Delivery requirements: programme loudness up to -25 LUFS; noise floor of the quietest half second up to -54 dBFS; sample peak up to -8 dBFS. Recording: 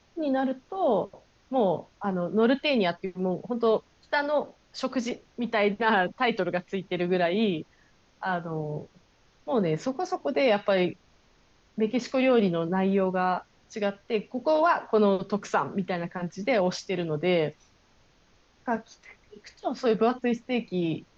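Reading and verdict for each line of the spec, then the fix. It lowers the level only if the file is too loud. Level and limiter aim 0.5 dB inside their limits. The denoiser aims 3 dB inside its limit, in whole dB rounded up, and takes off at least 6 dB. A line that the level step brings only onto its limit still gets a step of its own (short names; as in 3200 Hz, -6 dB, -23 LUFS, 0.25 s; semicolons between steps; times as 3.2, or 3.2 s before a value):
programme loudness -27.0 LUFS: OK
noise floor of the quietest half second -62 dBFS: OK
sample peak -11.0 dBFS: OK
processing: none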